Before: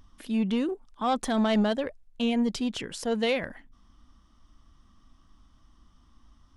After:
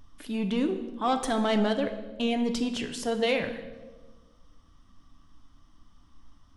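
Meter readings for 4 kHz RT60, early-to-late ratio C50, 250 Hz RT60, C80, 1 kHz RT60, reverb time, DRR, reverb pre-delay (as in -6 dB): 1.0 s, 10.0 dB, 1.6 s, 11.5 dB, 1.1 s, 1.3 s, 6.0 dB, 7 ms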